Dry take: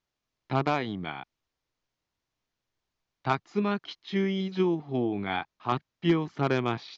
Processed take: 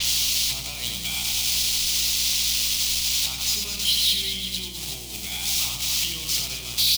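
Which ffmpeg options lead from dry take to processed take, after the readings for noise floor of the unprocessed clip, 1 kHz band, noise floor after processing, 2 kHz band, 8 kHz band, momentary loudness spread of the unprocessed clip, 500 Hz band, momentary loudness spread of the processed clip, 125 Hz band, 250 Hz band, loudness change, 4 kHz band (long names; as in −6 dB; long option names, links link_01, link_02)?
below −85 dBFS, −12.5 dB, −34 dBFS, +4.5 dB, can't be measured, 7 LU, −16.5 dB, 8 LU, −5.5 dB, −13.5 dB, +7.5 dB, +22.0 dB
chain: -af "aeval=exprs='val(0)+0.5*0.0335*sgn(val(0))':channel_layout=same,alimiter=limit=-22.5dB:level=0:latency=1,equalizer=frequency=280:width_type=o:width=0.97:gain=-10.5,aecho=1:1:90|207|359.1|556.8|813.9:0.631|0.398|0.251|0.158|0.1,acompressor=threshold=-41dB:ratio=5,aexciter=amount=8.7:drive=9.1:freq=2500,aeval=exprs='val(0)+0.01*(sin(2*PI*60*n/s)+sin(2*PI*2*60*n/s)/2+sin(2*PI*3*60*n/s)/3+sin(2*PI*4*60*n/s)/4+sin(2*PI*5*60*n/s)/5)':channel_layout=same,agate=range=-33dB:threshold=-27dB:ratio=3:detection=peak,adynamicequalizer=threshold=0.0251:dfrequency=5400:dqfactor=0.7:tfrequency=5400:tqfactor=0.7:attack=5:release=100:ratio=0.375:range=2.5:mode=cutabove:tftype=highshelf"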